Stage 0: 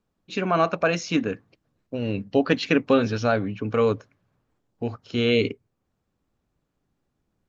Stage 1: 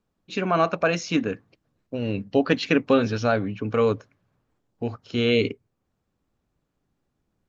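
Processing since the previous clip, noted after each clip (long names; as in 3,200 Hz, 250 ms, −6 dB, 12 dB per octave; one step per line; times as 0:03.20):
no processing that can be heard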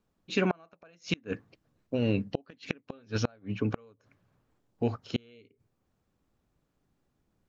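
gate with flip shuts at −14 dBFS, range −35 dB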